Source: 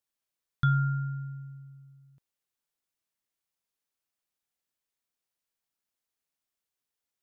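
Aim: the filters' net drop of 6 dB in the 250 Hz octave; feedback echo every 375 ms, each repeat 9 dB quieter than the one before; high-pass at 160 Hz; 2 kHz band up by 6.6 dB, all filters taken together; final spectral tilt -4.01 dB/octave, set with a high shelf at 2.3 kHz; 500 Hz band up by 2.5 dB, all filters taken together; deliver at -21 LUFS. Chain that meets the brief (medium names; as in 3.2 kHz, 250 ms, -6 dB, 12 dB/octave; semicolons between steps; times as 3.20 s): high-pass 160 Hz; peaking EQ 250 Hz -7.5 dB; peaking EQ 500 Hz +7.5 dB; peaking EQ 2 kHz +8.5 dB; treble shelf 2.3 kHz +7 dB; feedback delay 375 ms, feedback 35%, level -9 dB; trim +9.5 dB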